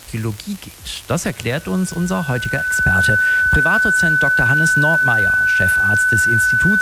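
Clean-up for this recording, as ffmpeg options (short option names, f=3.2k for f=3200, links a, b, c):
-af "adeclick=t=4,bandreject=f=1.5k:w=30,afwtdn=0.01"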